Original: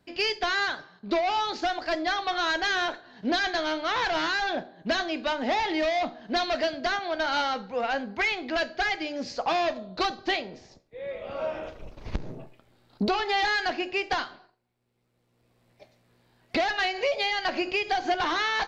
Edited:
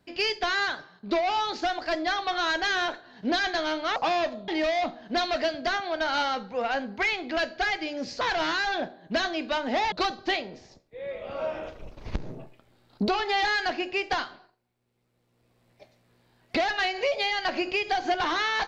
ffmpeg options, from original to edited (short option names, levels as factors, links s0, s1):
-filter_complex "[0:a]asplit=5[s0][s1][s2][s3][s4];[s0]atrim=end=3.962[s5];[s1]atrim=start=9.398:end=9.922[s6];[s2]atrim=start=5.668:end=9.402[s7];[s3]atrim=start=3.958:end=5.672[s8];[s4]atrim=start=9.918[s9];[s5][s6]acrossfade=d=0.004:c1=hsin:c2=hsin[s10];[s10][s7]acrossfade=d=0.004:c1=hsin:c2=hsin[s11];[s11][s8]acrossfade=d=0.004:c1=hsin:c2=hsin[s12];[s12][s9]acrossfade=d=0.004:c1=hsin:c2=hsin"